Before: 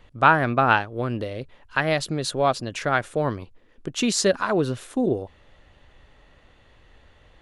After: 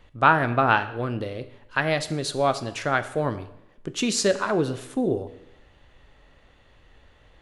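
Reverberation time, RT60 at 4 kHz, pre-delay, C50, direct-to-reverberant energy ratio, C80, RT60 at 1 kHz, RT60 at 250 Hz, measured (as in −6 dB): 0.90 s, 0.80 s, 5 ms, 14.0 dB, 10.5 dB, 16.0 dB, 0.90 s, 0.85 s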